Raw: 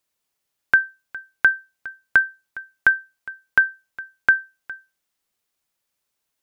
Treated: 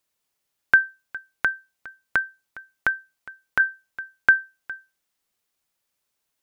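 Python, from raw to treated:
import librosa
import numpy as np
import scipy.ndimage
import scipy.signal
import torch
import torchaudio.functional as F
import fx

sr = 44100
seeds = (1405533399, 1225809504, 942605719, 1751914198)

y = fx.notch(x, sr, hz=1600.0, q=9.3, at=(1.17, 3.6))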